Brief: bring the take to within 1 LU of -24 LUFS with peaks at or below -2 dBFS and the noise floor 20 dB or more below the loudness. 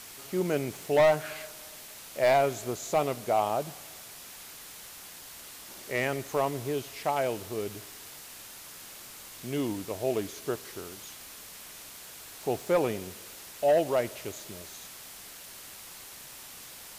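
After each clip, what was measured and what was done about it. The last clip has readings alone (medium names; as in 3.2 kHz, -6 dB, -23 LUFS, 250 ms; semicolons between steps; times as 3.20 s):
clipped samples 0.5%; clipping level -17.5 dBFS; noise floor -47 dBFS; noise floor target -50 dBFS; loudness -30.0 LUFS; peak level -17.5 dBFS; loudness target -24.0 LUFS
-> clip repair -17.5 dBFS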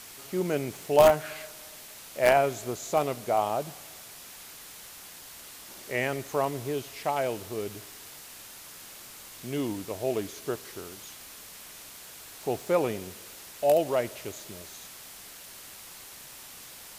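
clipped samples 0.0%; noise floor -47 dBFS; noise floor target -49 dBFS
-> noise reduction 6 dB, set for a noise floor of -47 dBFS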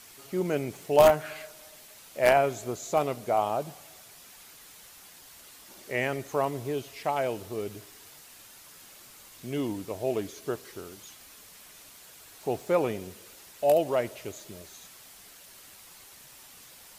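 noise floor -51 dBFS; loudness -28.0 LUFS; peak level -8.5 dBFS; loudness target -24.0 LUFS
-> trim +4 dB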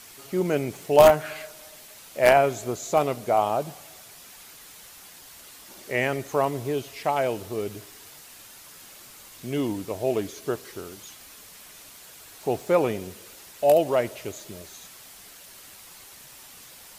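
loudness -24.0 LUFS; peak level -4.5 dBFS; noise floor -47 dBFS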